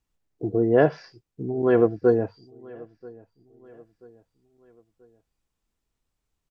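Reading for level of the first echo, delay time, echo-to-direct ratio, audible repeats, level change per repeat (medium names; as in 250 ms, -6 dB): -23.5 dB, 984 ms, -22.5 dB, 2, -7.5 dB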